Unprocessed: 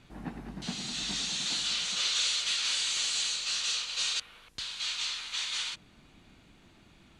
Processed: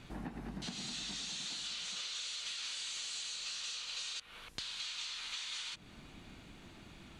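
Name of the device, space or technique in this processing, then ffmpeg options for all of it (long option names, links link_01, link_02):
serial compression, leveller first: -af "acompressor=threshold=-34dB:ratio=2.5,acompressor=threshold=-44dB:ratio=6,volume=4dB"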